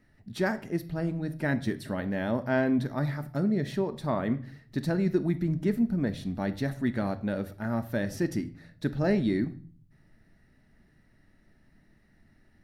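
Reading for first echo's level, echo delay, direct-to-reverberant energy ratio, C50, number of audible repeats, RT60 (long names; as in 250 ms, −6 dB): no echo audible, no echo audible, 9.5 dB, 16.0 dB, no echo audible, 0.45 s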